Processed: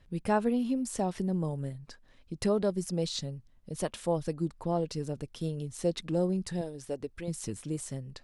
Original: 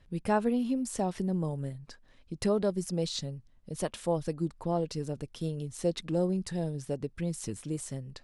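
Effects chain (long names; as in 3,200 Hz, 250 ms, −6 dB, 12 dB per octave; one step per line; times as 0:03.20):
0:06.61–0:07.28: parametric band 160 Hz −13 dB 0.79 octaves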